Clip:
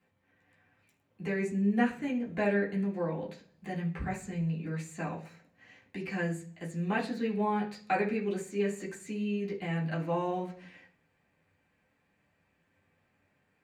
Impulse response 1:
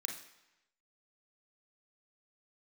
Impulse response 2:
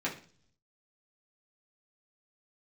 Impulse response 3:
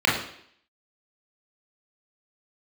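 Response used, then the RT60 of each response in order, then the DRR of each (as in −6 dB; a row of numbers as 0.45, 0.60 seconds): 2; 0.95, 0.45, 0.65 seconds; 1.5, −6.5, −5.5 decibels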